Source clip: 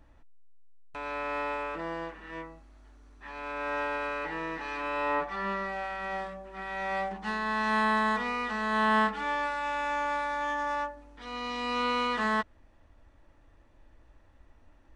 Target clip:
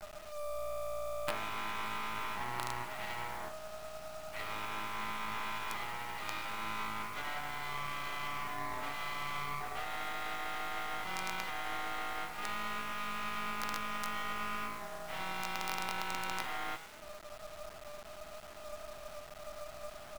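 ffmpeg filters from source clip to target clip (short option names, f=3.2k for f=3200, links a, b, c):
-filter_complex "[0:a]asplit=2[a][b];[b]asetrate=55563,aresample=44100,atempo=0.793701,volume=-10dB[c];[a][c]amix=inputs=2:normalize=0,acompressor=threshold=-38dB:ratio=16,asetrate=32667,aresample=44100,equalizer=f=1k:w=2.2:g=-6.5,alimiter=level_in=14.5dB:limit=-24dB:level=0:latency=1:release=208,volume=-14.5dB,asplit=2[d][e];[e]asplit=5[f][g][h][i][j];[f]adelay=110,afreqshift=57,volume=-13dB[k];[g]adelay=220,afreqshift=114,volume=-19.4dB[l];[h]adelay=330,afreqshift=171,volume=-25.8dB[m];[i]adelay=440,afreqshift=228,volume=-32.1dB[n];[j]adelay=550,afreqshift=285,volume=-38.5dB[o];[k][l][m][n][o]amix=inputs=5:normalize=0[p];[d][p]amix=inputs=2:normalize=0,afreqshift=430,bandreject=f=1.6k:w=19,highpass=f=260:t=q:w=0.5412,highpass=f=260:t=q:w=1.307,lowpass=f=3k:t=q:w=0.5176,lowpass=f=3k:t=q:w=0.7071,lowpass=f=3k:t=q:w=1.932,afreqshift=160,acrusher=bits=7:dc=4:mix=0:aa=0.000001,volume=11.5dB"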